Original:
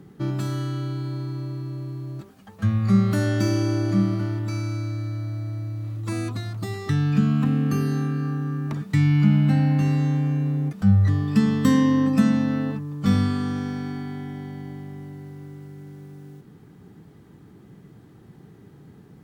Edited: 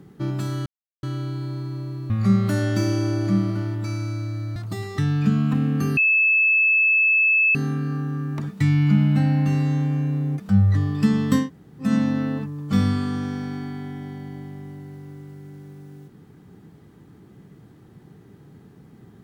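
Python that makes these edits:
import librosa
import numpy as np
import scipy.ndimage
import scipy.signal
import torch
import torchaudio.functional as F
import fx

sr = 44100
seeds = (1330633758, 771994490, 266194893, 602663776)

y = fx.edit(x, sr, fx.insert_silence(at_s=0.66, length_s=0.37),
    fx.cut(start_s=1.73, length_s=1.01),
    fx.cut(start_s=5.2, length_s=1.27),
    fx.insert_tone(at_s=7.88, length_s=1.58, hz=2610.0, db=-14.5),
    fx.room_tone_fill(start_s=11.75, length_s=0.44, crossfade_s=0.16), tone=tone)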